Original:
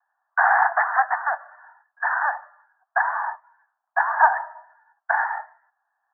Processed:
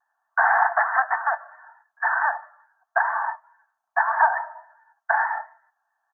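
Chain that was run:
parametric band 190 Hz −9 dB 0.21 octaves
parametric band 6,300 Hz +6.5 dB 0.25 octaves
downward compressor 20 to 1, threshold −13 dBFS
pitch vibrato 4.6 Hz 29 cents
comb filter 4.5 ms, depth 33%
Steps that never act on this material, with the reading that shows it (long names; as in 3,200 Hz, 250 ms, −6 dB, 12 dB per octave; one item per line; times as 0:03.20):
parametric band 190 Hz: nothing at its input below 570 Hz
parametric band 6,300 Hz: nothing at its input above 2,000 Hz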